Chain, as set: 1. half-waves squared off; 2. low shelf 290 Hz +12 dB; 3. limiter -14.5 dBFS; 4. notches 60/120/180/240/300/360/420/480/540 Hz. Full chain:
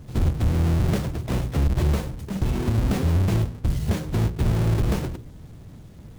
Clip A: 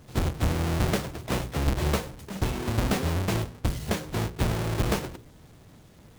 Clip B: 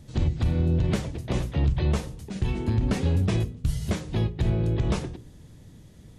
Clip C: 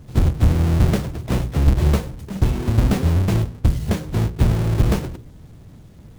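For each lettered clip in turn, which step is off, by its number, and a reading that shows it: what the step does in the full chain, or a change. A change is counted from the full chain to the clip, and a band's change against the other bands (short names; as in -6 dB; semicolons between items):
2, 125 Hz band -9.5 dB; 1, distortion -6 dB; 3, mean gain reduction 2.0 dB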